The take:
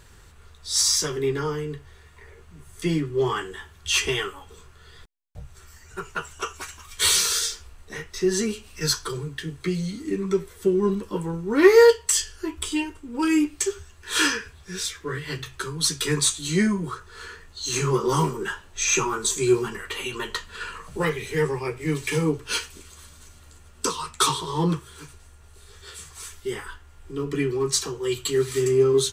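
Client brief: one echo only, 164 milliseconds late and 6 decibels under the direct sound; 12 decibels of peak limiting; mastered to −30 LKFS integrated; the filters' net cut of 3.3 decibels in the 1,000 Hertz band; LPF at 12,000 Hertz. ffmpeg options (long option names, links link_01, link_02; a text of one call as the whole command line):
ffmpeg -i in.wav -af "lowpass=12000,equalizer=frequency=1000:width_type=o:gain=-4,alimiter=limit=-15.5dB:level=0:latency=1,aecho=1:1:164:0.501,volume=-3.5dB" out.wav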